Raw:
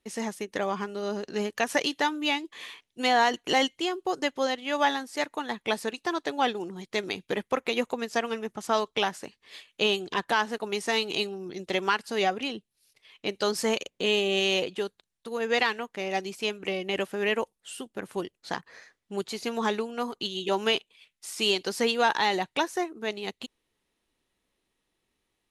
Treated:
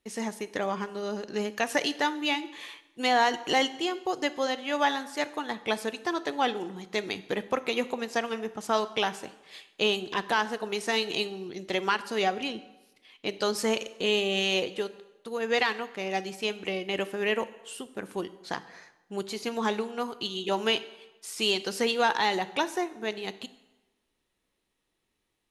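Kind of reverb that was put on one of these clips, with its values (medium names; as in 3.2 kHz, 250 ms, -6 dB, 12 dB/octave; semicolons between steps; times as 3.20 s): plate-style reverb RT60 1.1 s, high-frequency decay 0.8×, DRR 13.5 dB; trim -1 dB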